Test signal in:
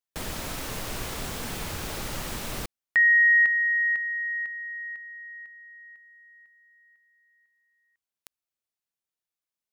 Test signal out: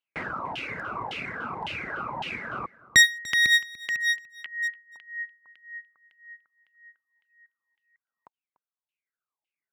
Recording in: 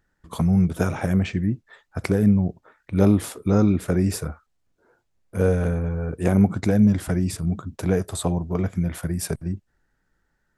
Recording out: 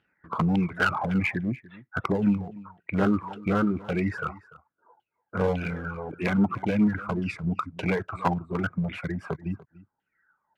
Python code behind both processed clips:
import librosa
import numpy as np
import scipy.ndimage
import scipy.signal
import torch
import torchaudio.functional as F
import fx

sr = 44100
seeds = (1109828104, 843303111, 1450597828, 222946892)

p1 = fx.peak_eq(x, sr, hz=3300.0, db=-5.5, octaves=0.38)
p2 = fx.filter_lfo_lowpass(p1, sr, shape='saw_down', hz=1.8, low_hz=830.0, high_hz=3100.0, q=6.7)
p3 = fx.clip_asym(p2, sr, top_db=-19.5, bottom_db=-3.5)
p4 = fx.dereverb_blind(p3, sr, rt60_s=1.4)
p5 = fx.dynamic_eq(p4, sr, hz=550.0, q=1.4, threshold_db=-36.0, ratio=4.0, max_db=-4)
p6 = scipy.signal.sosfilt(scipy.signal.butter(2, 120.0, 'highpass', fs=sr, output='sos'), p5)
p7 = fx.notch(p6, sr, hz=1800.0, q=8.9)
y = p7 + fx.echo_single(p7, sr, ms=293, db=-20.0, dry=0)